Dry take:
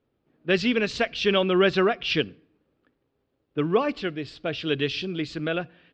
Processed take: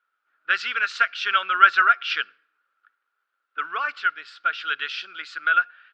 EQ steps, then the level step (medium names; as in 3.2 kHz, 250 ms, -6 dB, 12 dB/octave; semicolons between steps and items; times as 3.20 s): resonant high-pass 1.4 kHz, resonance Q 13; -2.5 dB